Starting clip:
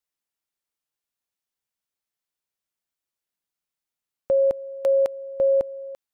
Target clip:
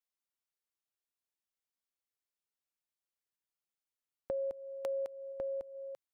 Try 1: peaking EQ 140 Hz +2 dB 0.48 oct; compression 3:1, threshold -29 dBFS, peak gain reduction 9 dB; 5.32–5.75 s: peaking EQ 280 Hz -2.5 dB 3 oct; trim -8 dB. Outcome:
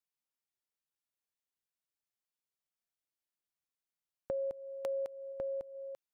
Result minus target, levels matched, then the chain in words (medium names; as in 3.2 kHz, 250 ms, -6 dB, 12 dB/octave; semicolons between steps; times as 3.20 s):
125 Hz band +3.0 dB
peaking EQ 140 Hz -8 dB 0.48 oct; compression 3:1, threshold -29 dBFS, peak gain reduction 8.5 dB; 5.32–5.75 s: peaking EQ 280 Hz -2.5 dB 3 oct; trim -8 dB